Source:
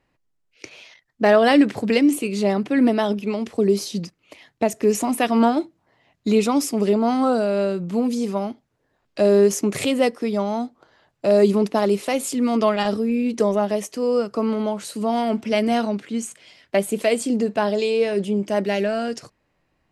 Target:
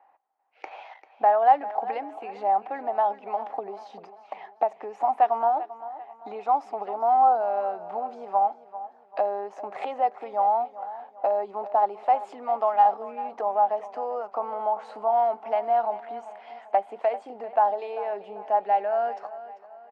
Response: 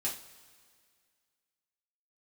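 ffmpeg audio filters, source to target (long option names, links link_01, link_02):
-af "lowpass=1400,acompressor=threshold=-35dB:ratio=3,highpass=frequency=790:width_type=q:width=9.6,aecho=1:1:393|786|1179|1572:0.178|0.0747|0.0314|0.0132,volume=4.5dB"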